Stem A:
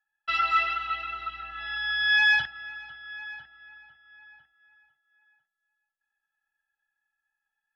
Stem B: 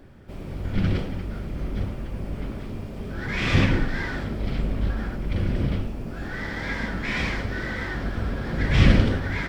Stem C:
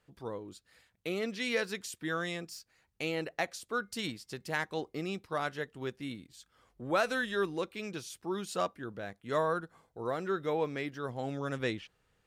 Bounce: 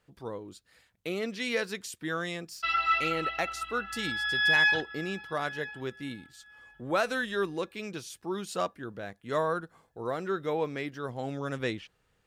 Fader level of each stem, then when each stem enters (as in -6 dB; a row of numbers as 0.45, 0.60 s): -2.5 dB, off, +1.5 dB; 2.35 s, off, 0.00 s